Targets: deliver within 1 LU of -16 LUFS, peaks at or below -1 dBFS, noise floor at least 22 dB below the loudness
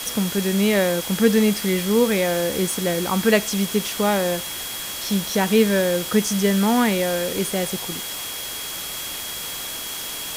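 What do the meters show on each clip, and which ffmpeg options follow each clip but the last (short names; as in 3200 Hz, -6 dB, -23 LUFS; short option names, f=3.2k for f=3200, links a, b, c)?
steady tone 3300 Hz; tone level -35 dBFS; noise floor -31 dBFS; noise floor target -44 dBFS; loudness -21.5 LUFS; peak -4.0 dBFS; loudness target -16.0 LUFS
-> -af "bandreject=f=3.3k:w=30"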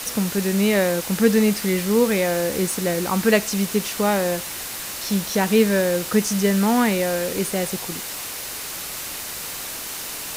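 steady tone none; noise floor -32 dBFS; noise floor target -44 dBFS
-> -af "afftdn=nr=12:nf=-32"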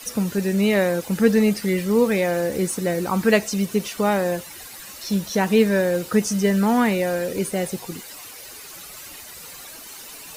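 noise floor -40 dBFS; noise floor target -43 dBFS
-> -af "afftdn=nr=6:nf=-40"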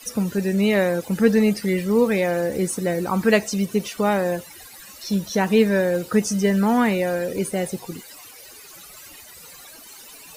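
noise floor -44 dBFS; loudness -21.0 LUFS; peak -5.0 dBFS; loudness target -16.0 LUFS
-> -af "volume=5dB,alimiter=limit=-1dB:level=0:latency=1"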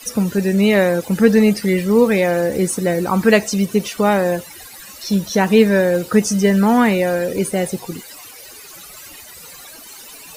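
loudness -16.0 LUFS; peak -1.0 dBFS; noise floor -39 dBFS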